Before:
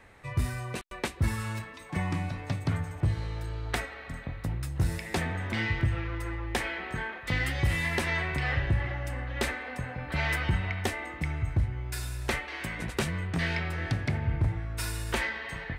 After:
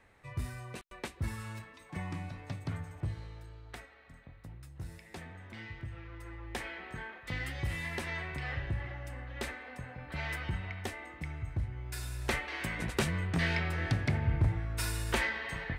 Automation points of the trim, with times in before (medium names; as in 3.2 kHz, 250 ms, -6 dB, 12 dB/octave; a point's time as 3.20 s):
3.00 s -8.5 dB
3.66 s -16 dB
5.83 s -16 dB
6.60 s -8.5 dB
11.51 s -8.5 dB
12.49 s -1 dB